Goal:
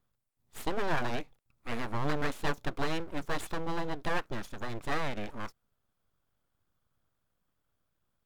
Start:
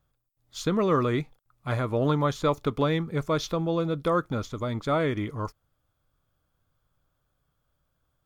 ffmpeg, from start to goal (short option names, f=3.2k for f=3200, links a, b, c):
-af "aeval=exprs='abs(val(0))':c=same,volume=-4dB"